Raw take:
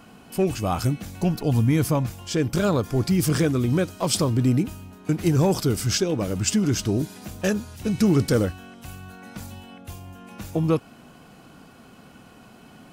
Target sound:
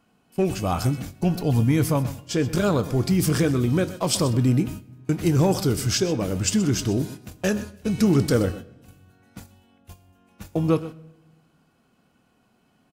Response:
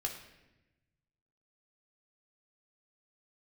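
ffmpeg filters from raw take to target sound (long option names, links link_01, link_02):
-filter_complex "[0:a]aecho=1:1:126:0.168,agate=range=-16dB:threshold=-34dB:ratio=16:detection=peak,asplit=2[link_01][link_02];[1:a]atrim=start_sample=2205,adelay=22[link_03];[link_02][link_03]afir=irnorm=-1:irlink=0,volume=-15.5dB[link_04];[link_01][link_04]amix=inputs=2:normalize=0"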